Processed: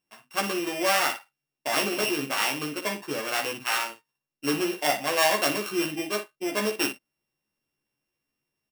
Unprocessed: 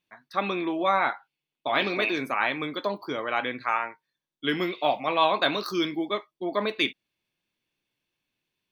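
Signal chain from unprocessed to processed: sorted samples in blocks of 16 samples; early reflections 14 ms -3 dB, 58 ms -9 dB; trim -2 dB

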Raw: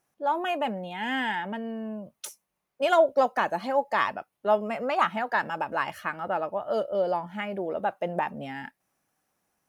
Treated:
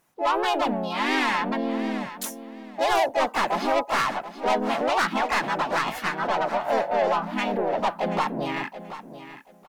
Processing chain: saturation -27 dBFS, distortion -7 dB; harmony voices +3 st 0 dB, +7 st -5 dB; feedback delay 731 ms, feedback 20%, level -13 dB; trim +4.5 dB

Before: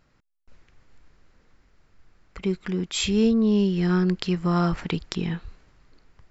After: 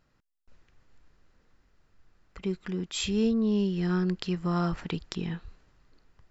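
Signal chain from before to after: band-stop 2.2 kHz, Q 16; trim -5.5 dB

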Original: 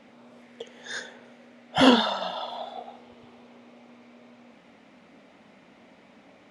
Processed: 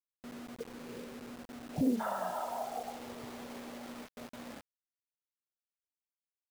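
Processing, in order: gate with hold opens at -42 dBFS; inverse Chebyshev low-pass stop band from 2.5 kHz, stop band 80 dB, from 1.99 s stop band from 9.4 kHz; compression 2:1, threshold -46 dBFS, peak gain reduction 17 dB; bit crusher 9-bit; trim +5.5 dB

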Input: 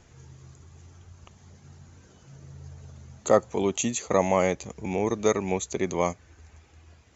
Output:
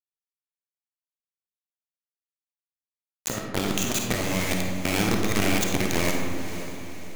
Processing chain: graphic EQ 125/250/500/1000/2000/4000 Hz +8/+3/-8/-10/+7/+6 dB; bit crusher 4-bit; compressor with a negative ratio -26 dBFS, ratio -0.5; echo that smears into a reverb 534 ms, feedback 46%, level -11 dB; algorithmic reverb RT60 1.8 s, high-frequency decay 0.4×, pre-delay 10 ms, DRR 0.5 dB

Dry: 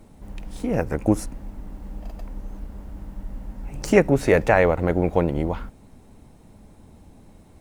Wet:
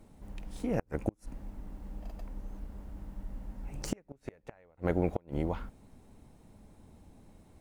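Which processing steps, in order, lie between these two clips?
inverted gate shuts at -9 dBFS, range -36 dB; trim -7.5 dB

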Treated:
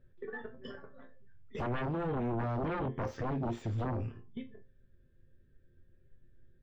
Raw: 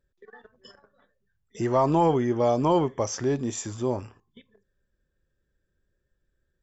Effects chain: peaking EQ 970 Hz -8 dB 1.8 oct, from 1.79 s -14.5 dB; compression 3:1, threshold -40 dBFS, peak gain reduction 13 dB; chord resonator F2 sus4, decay 0.22 s; sine folder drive 13 dB, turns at -36.5 dBFS; distance through air 500 m; trim +7 dB

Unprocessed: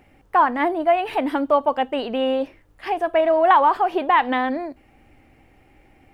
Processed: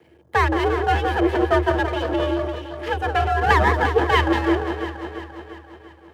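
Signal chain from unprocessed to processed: reverb removal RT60 1.8 s; on a send: echo whose repeats swap between lows and highs 172 ms, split 900 Hz, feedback 73%, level -5 dB; on the sum: half-wave rectifier; small resonant body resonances 260/390/1600/3000 Hz, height 12 dB, ringing for 40 ms; frequency shift +76 Hz

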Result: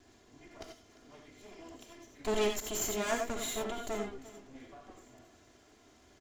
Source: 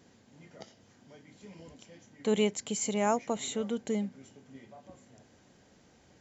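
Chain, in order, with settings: comb filter that takes the minimum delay 2.9 ms; delay 347 ms -18 dB; gated-style reverb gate 110 ms rising, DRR 3 dB

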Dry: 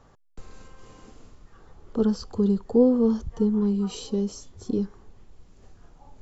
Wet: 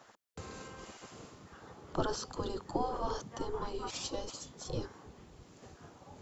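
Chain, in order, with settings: spectral gate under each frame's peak -15 dB weak; trim +5 dB

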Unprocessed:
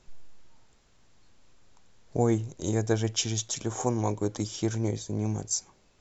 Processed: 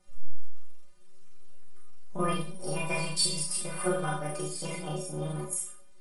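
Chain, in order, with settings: rotating-head pitch shifter +6.5 st; dynamic bell 2.7 kHz, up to +8 dB, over -50 dBFS, Q 0.9; inharmonic resonator 180 Hz, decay 0.28 s, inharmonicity 0.008; Schroeder reverb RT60 0.37 s, combs from 27 ms, DRR -2 dB; trim +8 dB

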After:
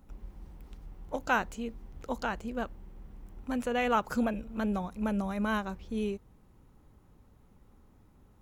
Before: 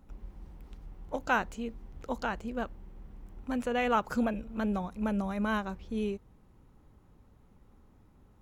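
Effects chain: treble shelf 7 kHz +5 dB

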